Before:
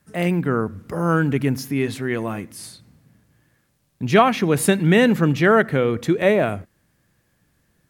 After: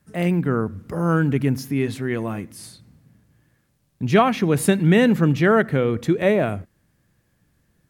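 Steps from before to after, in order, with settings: bass shelf 320 Hz +5 dB; trim -3 dB

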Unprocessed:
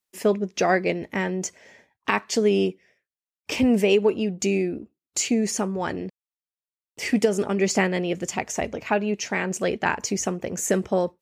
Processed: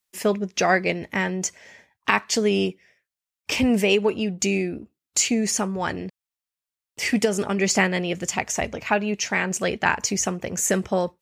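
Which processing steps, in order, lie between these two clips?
peaking EQ 360 Hz -6.5 dB 2.1 oct; trim +4.5 dB

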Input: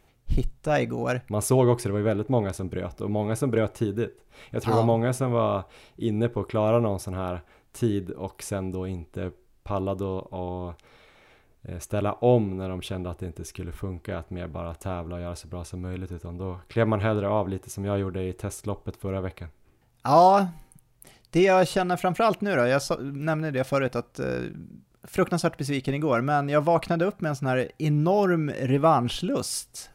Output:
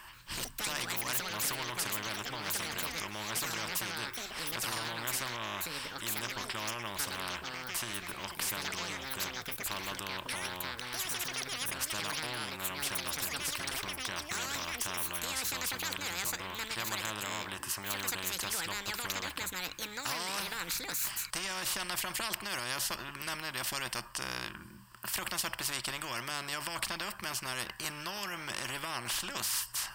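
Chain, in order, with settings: rippled EQ curve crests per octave 1.3, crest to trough 11 dB; peak limiter -14.5 dBFS, peak gain reduction 11.5 dB; resonant low shelf 760 Hz -13.5 dB, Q 3; ever faster or slower copies 131 ms, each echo +6 st, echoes 2, each echo -6 dB; spectrum-flattening compressor 4:1; trim -2.5 dB

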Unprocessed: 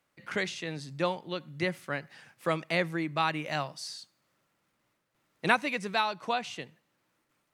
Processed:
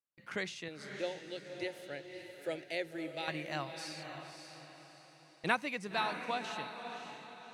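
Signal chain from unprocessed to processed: gate with hold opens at -47 dBFS; 0.68–3.28 s: static phaser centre 460 Hz, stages 4; echo that smears into a reverb 566 ms, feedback 43%, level -7 dB; trim -6.5 dB

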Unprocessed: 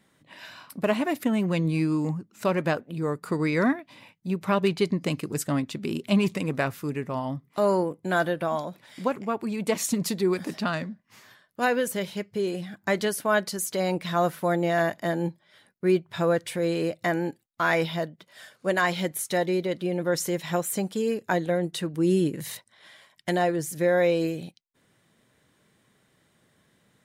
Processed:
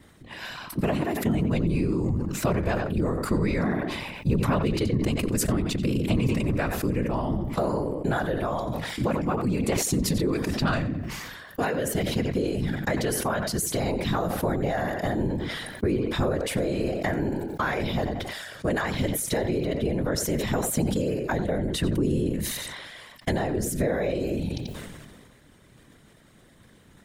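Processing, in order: on a send: tape echo 89 ms, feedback 21%, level -12.5 dB, low-pass 5.1 kHz; on the sum: whisper effect; compression 6:1, threshold -33 dBFS, peak gain reduction 17 dB; bass shelf 240 Hz +8 dB; decay stretcher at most 31 dB/s; trim +6 dB

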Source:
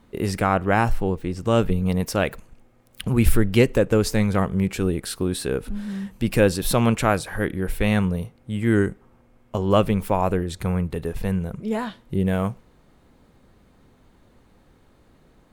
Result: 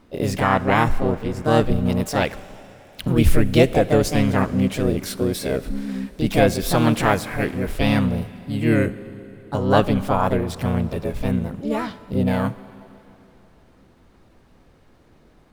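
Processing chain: median filter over 3 samples; Schroeder reverb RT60 3.3 s, combs from 31 ms, DRR 16 dB; harmony voices +5 st -3 dB

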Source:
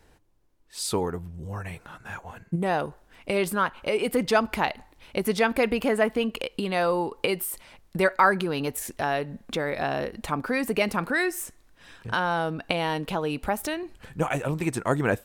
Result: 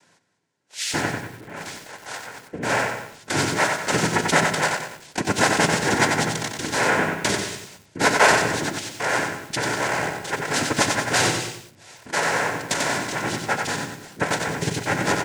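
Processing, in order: high-pass 490 Hz 6 dB/octave; noise-vocoded speech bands 3; Butterworth band-stop 1.2 kHz, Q 5.5; delay 201 ms -15 dB; simulated room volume 440 m³, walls mixed, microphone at 0.33 m; bit-crushed delay 92 ms, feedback 35%, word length 8-bit, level -4 dB; trim +5 dB

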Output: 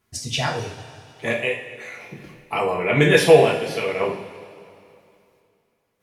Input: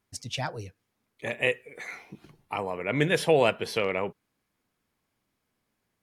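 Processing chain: square tremolo 0.5 Hz, depth 60%, duty 70%; two-slope reverb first 0.43 s, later 2.6 s, from -16 dB, DRR -3.5 dB; trim +4.5 dB

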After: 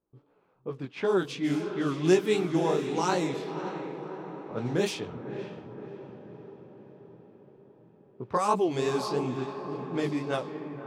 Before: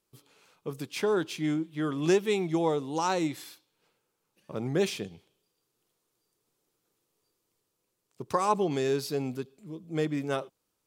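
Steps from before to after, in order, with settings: chorus 2.8 Hz, delay 16 ms, depth 7.6 ms; on a send: echo that smears into a reverb 587 ms, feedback 61%, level -9 dB; on the sum: level-controlled noise filter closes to 850 Hz, open at -26.5 dBFS; trim +3.5 dB

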